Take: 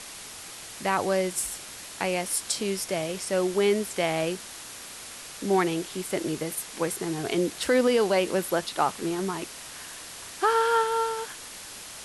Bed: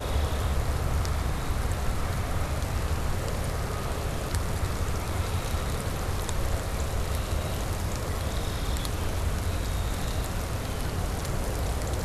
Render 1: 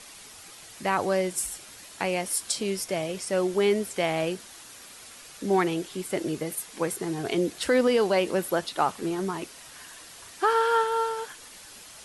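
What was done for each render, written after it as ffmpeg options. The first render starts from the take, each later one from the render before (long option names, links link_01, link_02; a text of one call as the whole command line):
ffmpeg -i in.wav -af "afftdn=noise_reduction=7:noise_floor=-42" out.wav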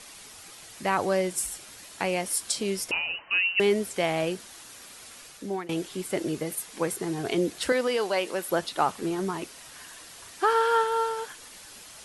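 ffmpeg -i in.wav -filter_complex "[0:a]asettb=1/sr,asplit=3[link_01][link_02][link_03];[link_01]atrim=end=2.914[link_04];[link_02]atrim=start=2.91:end=3.6,asetpts=PTS-STARTPTS,afade=type=in:duration=0.004:curve=qsin,afade=type=out:start_time=0.686:duration=0.004:curve=qsin,lowpass=frequency=2600:width_type=q:width=0.5098,lowpass=frequency=2600:width_type=q:width=0.6013,lowpass=frequency=2600:width_type=q:width=0.9,lowpass=frequency=2600:width_type=q:width=2.563,afreqshift=-3100[link_05];[link_03]atrim=start=3.596[link_06];[link_04][link_05]acrossfade=duration=0.004:curve1=hsin:curve2=qsin[link_07];[link_07][link_06]acrossfade=duration=0.004:curve1=qsin:curve2=hsin,asettb=1/sr,asplit=3[link_08][link_09][link_10];[link_08]atrim=end=7.724[link_11];[link_09]atrim=start=7.72:end=8.49,asetpts=PTS-STARTPTS,afade=type=in:duration=0.004:curve=qsin,afade=type=out:start_time=0.766:duration=0.004:curve=qsin,highpass=frequency=620:poles=1[link_12];[link_10]atrim=start=8.486[link_13];[link_11][link_12]acrossfade=duration=0.004:curve1=hsin:curve2=qsin[link_14];[link_14][link_13]acrossfade=duration=0.004:curve1=qsin:curve2=hsin,asplit=2[link_15][link_16];[link_15]atrim=end=5.69,asetpts=PTS-STARTPTS,afade=type=out:start_time=5.23:duration=0.46:silence=0.0891251[link_17];[link_16]atrim=start=5.69,asetpts=PTS-STARTPTS,afade=type=in:duration=0.004:curve=hsin:silence=0.0891251[link_18];[link_17][link_18]concat=n=2:v=0:a=1" out.wav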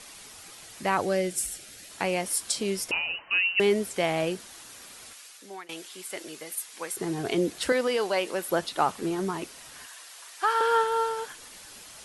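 ffmpeg -i in.wav -filter_complex "[0:a]asettb=1/sr,asplit=3[link_01][link_02][link_03];[link_01]atrim=end=1.014[link_04];[link_02]atrim=start=1.01:end=1.9,asetpts=PTS-STARTPTS,afade=type=in:duration=0.004:curve=qsin,afade=type=out:start_time=0.886:duration=0.004:curve=qsin,equalizer=frequency=1000:width_type=o:width=0.5:gain=-13[link_05];[link_03]atrim=start=1.896[link_06];[link_04][link_05]acrossfade=duration=0.004:curve1=hsin:curve2=qsin[link_07];[link_07][link_06]acrossfade=duration=0.004:curve1=qsin:curve2=hsin,asettb=1/sr,asplit=3[link_08][link_09][link_10];[link_08]atrim=end=5.134[link_11];[link_09]atrim=start=5.13:end=6.97,asetpts=PTS-STARTPTS,afade=type=in:duration=0.004:curve=qsin,afade=type=out:start_time=1.836:duration=0.004:curve=qsin,highpass=frequency=1500:poles=1[link_12];[link_10]atrim=start=6.966[link_13];[link_11][link_12]acrossfade=duration=0.004:curve1=hsin:curve2=qsin[link_14];[link_14][link_13]acrossfade=duration=0.004:curve1=qsin:curve2=hsin,asettb=1/sr,asplit=3[link_15][link_16][link_17];[link_15]atrim=end=9.864[link_18];[link_16]atrim=start=9.86:end=10.61,asetpts=PTS-STARTPTS,afade=type=in:duration=0.004:curve=qsin,afade=type=out:start_time=0.746:duration=0.004:curve=qsin,highpass=710[link_19];[link_17]atrim=start=10.606[link_20];[link_18][link_19]acrossfade=duration=0.004:curve1=hsin:curve2=qsin[link_21];[link_21][link_20]acrossfade=duration=0.004:curve1=qsin:curve2=hsin" out.wav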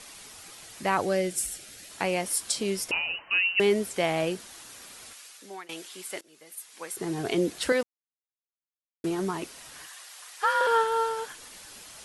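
ffmpeg -i in.wav -filter_complex "[0:a]asettb=1/sr,asplit=3[link_01][link_02][link_03];[link_01]atrim=end=9.824[link_04];[link_02]atrim=start=9.82:end=10.67,asetpts=PTS-STARTPTS,afade=type=in:duration=0.004:curve=qsin,afade=type=out:start_time=0.846:duration=0.004:curve=qsin,afreqshift=60[link_05];[link_03]atrim=start=10.666[link_06];[link_04][link_05]acrossfade=duration=0.004:curve1=hsin:curve2=qsin[link_07];[link_07][link_06]acrossfade=duration=0.004:curve1=qsin:curve2=hsin,asplit=4[link_08][link_09][link_10][link_11];[link_08]atrim=end=6.21,asetpts=PTS-STARTPTS,afade=type=out:start_time=6.206:duration=0.004:curve=hsin:silence=0.0630957[link_12];[link_09]atrim=start=6.21:end=7.83,asetpts=PTS-STARTPTS,afade=type=in:duration=0.98:silence=0.0630957,afade=type=out:start_time=1.616:duration=0.004:curve=hsin[link_13];[link_10]atrim=start=7.83:end=9.04,asetpts=PTS-STARTPTS,volume=0[link_14];[link_11]atrim=start=9.04,asetpts=PTS-STARTPTS,afade=type=in:duration=0.004:curve=hsin[link_15];[link_12][link_13][link_14][link_15]concat=n=4:v=0:a=1" out.wav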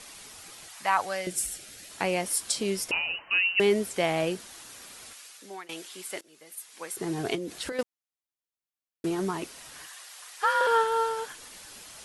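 ffmpeg -i in.wav -filter_complex "[0:a]asettb=1/sr,asplit=3[link_01][link_02][link_03];[link_01]atrim=end=0.684[link_04];[link_02]atrim=start=0.68:end=1.27,asetpts=PTS-STARTPTS,afade=type=in:duration=0.004:curve=qsin,afade=type=out:start_time=0.586:duration=0.004:curve=qsin,lowshelf=frequency=570:width_type=q:width=1.5:gain=-13[link_05];[link_03]atrim=start=1.266[link_06];[link_04][link_05]acrossfade=duration=0.004:curve1=hsin:curve2=qsin[link_07];[link_07][link_06]acrossfade=duration=0.004:curve1=qsin:curve2=hsin,asettb=1/sr,asplit=3[link_08][link_09][link_10];[link_08]atrim=end=7.354[link_11];[link_09]atrim=start=7.35:end=7.79,asetpts=PTS-STARTPTS,afade=type=in:duration=0.004:curve=qsin,afade=type=out:start_time=0.436:duration=0.004:curve=qsin,acompressor=threshold=-30dB:ratio=10:attack=3.2:release=140:knee=1:detection=peak[link_12];[link_10]atrim=start=7.786[link_13];[link_11][link_12]acrossfade=duration=0.004:curve1=hsin:curve2=qsin[link_14];[link_14][link_13]acrossfade=duration=0.004:curve1=qsin:curve2=hsin" out.wav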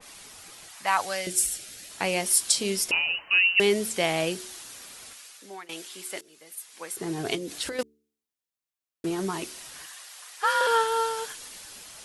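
ffmpeg -i in.wav -af "bandreject=frequency=73.57:width_type=h:width=4,bandreject=frequency=147.14:width_type=h:width=4,bandreject=frequency=220.71:width_type=h:width=4,bandreject=frequency=294.28:width_type=h:width=4,bandreject=frequency=367.85:width_type=h:width=4,bandreject=frequency=441.42:width_type=h:width=4,adynamicequalizer=threshold=0.00891:dfrequency=2400:dqfactor=0.7:tfrequency=2400:tqfactor=0.7:attack=5:release=100:ratio=0.375:range=3.5:mode=boostabove:tftype=highshelf" out.wav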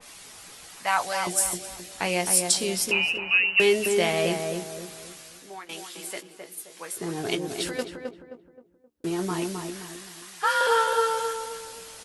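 ffmpeg -i in.wav -filter_complex "[0:a]asplit=2[link_01][link_02];[link_02]adelay=17,volume=-8dB[link_03];[link_01][link_03]amix=inputs=2:normalize=0,asplit=2[link_04][link_05];[link_05]adelay=263,lowpass=frequency=1200:poles=1,volume=-3.5dB,asplit=2[link_06][link_07];[link_07]adelay=263,lowpass=frequency=1200:poles=1,volume=0.42,asplit=2[link_08][link_09];[link_09]adelay=263,lowpass=frequency=1200:poles=1,volume=0.42,asplit=2[link_10][link_11];[link_11]adelay=263,lowpass=frequency=1200:poles=1,volume=0.42,asplit=2[link_12][link_13];[link_13]adelay=263,lowpass=frequency=1200:poles=1,volume=0.42[link_14];[link_04][link_06][link_08][link_10][link_12][link_14]amix=inputs=6:normalize=0" out.wav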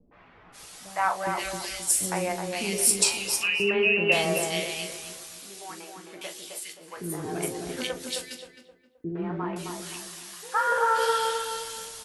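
ffmpeg -i in.wav -filter_complex "[0:a]asplit=2[link_01][link_02];[link_02]adelay=40,volume=-10.5dB[link_03];[link_01][link_03]amix=inputs=2:normalize=0,acrossover=split=390|2100[link_04][link_05][link_06];[link_05]adelay=110[link_07];[link_06]adelay=520[link_08];[link_04][link_07][link_08]amix=inputs=3:normalize=0" out.wav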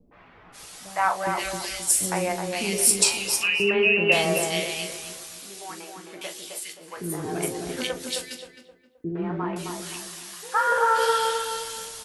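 ffmpeg -i in.wav -af "volume=2.5dB" out.wav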